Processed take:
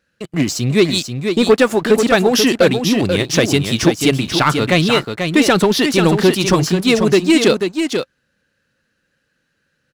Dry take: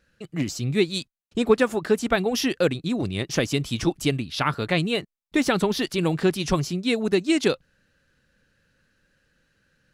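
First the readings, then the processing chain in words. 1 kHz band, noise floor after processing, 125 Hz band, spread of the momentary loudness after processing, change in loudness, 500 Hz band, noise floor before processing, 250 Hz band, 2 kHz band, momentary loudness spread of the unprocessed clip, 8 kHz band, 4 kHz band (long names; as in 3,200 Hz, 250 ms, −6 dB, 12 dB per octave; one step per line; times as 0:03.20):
+10.0 dB, −68 dBFS, +9.0 dB, 6 LU, +9.5 dB, +9.5 dB, −71 dBFS, +9.5 dB, +10.0 dB, 6 LU, +11.5 dB, +11.0 dB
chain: high-pass filter 130 Hz 6 dB per octave
leveller curve on the samples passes 2
on a send: single-tap delay 488 ms −6.5 dB
on the sum: level +3.5 dB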